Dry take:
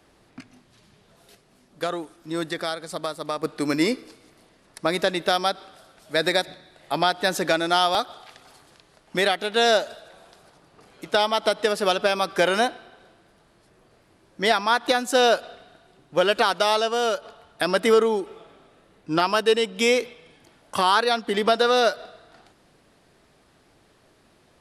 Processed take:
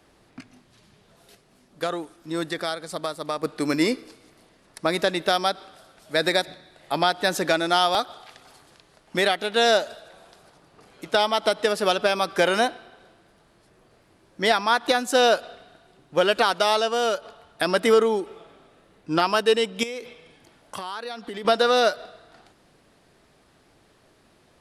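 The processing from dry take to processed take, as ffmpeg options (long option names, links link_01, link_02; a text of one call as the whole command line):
ffmpeg -i in.wav -filter_complex "[0:a]asettb=1/sr,asplit=3[link_01][link_02][link_03];[link_01]atrim=end=19.834[link_04];[link_02]atrim=start=19.83:end=21.45,asetpts=PTS-STARTPTS,afade=type=in:duration=0.004:curve=qsin,afade=type=out:start_time=1.616:duration=0.004:curve=qsin,acompressor=threshold=-31dB:ratio=5:attack=3.2:release=140:knee=1:detection=peak[link_05];[link_03]atrim=start=21.446[link_06];[link_04][link_05]acrossfade=duration=0.004:curve1=hsin:curve2=qsin[link_07];[link_07][link_06]acrossfade=duration=0.004:curve1=qsin:curve2=hsin" out.wav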